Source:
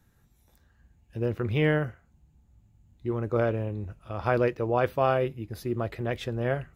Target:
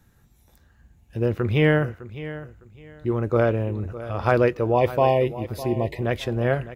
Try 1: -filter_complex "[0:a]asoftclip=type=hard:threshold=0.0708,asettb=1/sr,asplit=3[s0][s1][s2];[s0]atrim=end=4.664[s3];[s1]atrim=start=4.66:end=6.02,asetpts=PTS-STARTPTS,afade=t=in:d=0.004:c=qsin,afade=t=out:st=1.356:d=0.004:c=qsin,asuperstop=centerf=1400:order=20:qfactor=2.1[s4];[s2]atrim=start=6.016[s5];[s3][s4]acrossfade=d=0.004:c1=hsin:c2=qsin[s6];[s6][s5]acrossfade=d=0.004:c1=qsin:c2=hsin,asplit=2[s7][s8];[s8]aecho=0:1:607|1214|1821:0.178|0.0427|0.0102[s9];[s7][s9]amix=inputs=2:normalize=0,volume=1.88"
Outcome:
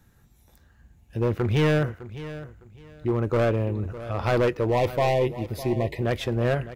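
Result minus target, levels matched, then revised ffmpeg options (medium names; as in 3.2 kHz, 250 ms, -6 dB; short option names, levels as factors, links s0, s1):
hard clipper: distortion +35 dB
-filter_complex "[0:a]asoftclip=type=hard:threshold=0.282,asettb=1/sr,asplit=3[s0][s1][s2];[s0]atrim=end=4.664[s3];[s1]atrim=start=4.66:end=6.02,asetpts=PTS-STARTPTS,afade=t=in:d=0.004:c=qsin,afade=t=out:st=1.356:d=0.004:c=qsin,asuperstop=centerf=1400:order=20:qfactor=2.1[s4];[s2]atrim=start=6.016[s5];[s3][s4]acrossfade=d=0.004:c1=hsin:c2=qsin[s6];[s6][s5]acrossfade=d=0.004:c1=qsin:c2=hsin,asplit=2[s7][s8];[s8]aecho=0:1:607|1214|1821:0.178|0.0427|0.0102[s9];[s7][s9]amix=inputs=2:normalize=0,volume=1.88"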